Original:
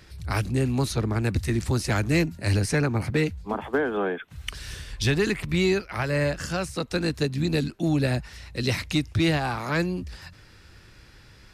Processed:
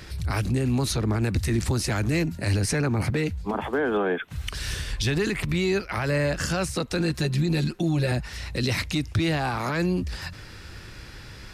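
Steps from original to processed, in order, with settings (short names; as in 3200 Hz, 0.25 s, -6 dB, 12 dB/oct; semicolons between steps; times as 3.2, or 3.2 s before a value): 6.99–8.12 comb 5.6 ms, depth 81%; in parallel at -1.5 dB: compressor, threshold -38 dBFS, peak gain reduction 19.5 dB; on the sum: limiter -20 dBFS, peak gain reduction 10.5 dB; gain +3.5 dB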